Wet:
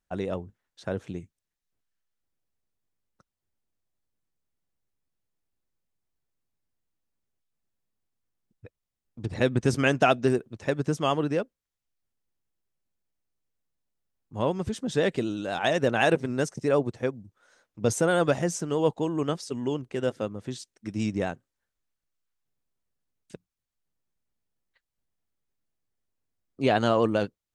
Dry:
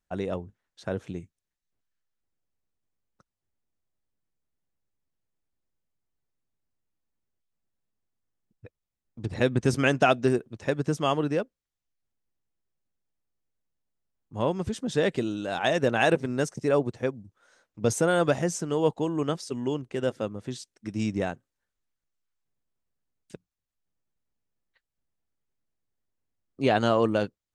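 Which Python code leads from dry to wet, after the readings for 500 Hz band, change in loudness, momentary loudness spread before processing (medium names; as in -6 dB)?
0.0 dB, 0.0 dB, 14 LU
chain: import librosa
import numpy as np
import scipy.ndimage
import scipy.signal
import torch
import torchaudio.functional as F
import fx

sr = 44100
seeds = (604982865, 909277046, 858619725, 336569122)

y = fx.vibrato(x, sr, rate_hz=12.0, depth_cents=33.0)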